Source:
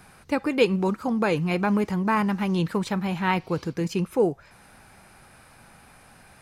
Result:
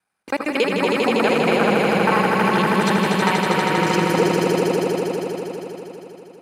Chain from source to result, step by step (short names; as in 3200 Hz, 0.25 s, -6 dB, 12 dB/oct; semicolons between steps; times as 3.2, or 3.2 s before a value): local time reversal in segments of 46 ms; gate -39 dBFS, range -32 dB; HPF 470 Hz 6 dB/oct; compressor 2:1, threshold -28 dBFS, peak gain reduction 6.5 dB; on a send: swelling echo 80 ms, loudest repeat 5, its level -4.5 dB; on the sum: gain +8 dB